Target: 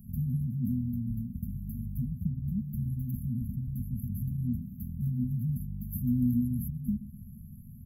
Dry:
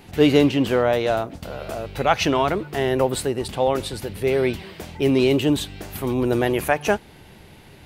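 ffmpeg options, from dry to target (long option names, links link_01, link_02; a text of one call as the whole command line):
ffmpeg -i in.wav -filter_complex "[0:a]acrossover=split=170|1600[link_01][link_02][link_03];[link_01]acompressor=threshold=-34dB:ratio=4[link_04];[link_02]acompressor=threshold=-19dB:ratio=4[link_05];[link_03]acompressor=threshold=-41dB:ratio=4[link_06];[link_04][link_05][link_06]amix=inputs=3:normalize=0,asplit=2[link_07][link_08];[link_08]adelay=128,lowpass=frequency=2800:poles=1,volume=-15dB,asplit=2[link_09][link_10];[link_10]adelay=128,lowpass=frequency=2800:poles=1,volume=0.47,asplit=2[link_11][link_12];[link_12]adelay=128,lowpass=frequency=2800:poles=1,volume=0.47,asplit=2[link_13][link_14];[link_14]adelay=128,lowpass=frequency=2800:poles=1,volume=0.47[link_15];[link_07][link_09][link_11][link_13][link_15]amix=inputs=5:normalize=0,afftfilt=real='re*(1-between(b*sr/4096,250,11000))':imag='im*(1-between(b*sr/4096,250,11000))':win_size=4096:overlap=0.75,volume=2dB" out.wav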